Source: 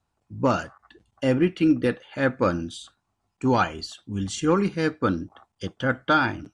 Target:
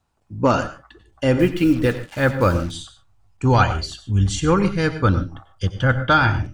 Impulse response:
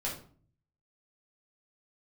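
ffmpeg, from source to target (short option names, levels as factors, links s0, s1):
-filter_complex "[0:a]asubboost=boost=9.5:cutoff=87,asettb=1/sr,asplit=3[s0][s1][s2];[s0]atrim=end=1.394[s3];[s1]atrim=start=1.39:end=2.71,asetpts=PTS-STARTPTS,afade=t=in:d=0.004:c=qsin,afade=t=out:st=1.316:d=0.004:c=qsin,acrusher=bits=6:mix=0:aa=0.5[s4];[s2]atrim=start=2.706[s5];[s3][s4]acrossfade=d=0.004:c1=hsin:c2=qsin[s6];[s6][s5]acrossfade=d=0.004:c1=qsin:c2=hsin,asplit=2[s7][s8];[1:a]atrim=start_sample=2205,atrim=end_sample=3087,adelay=89[s9];[s8][s9]afir=irnorm=-1:irlink=0,volume=0.188[s10];[s7][s10]amix=inputs=2:normalize=0,volume=1.78"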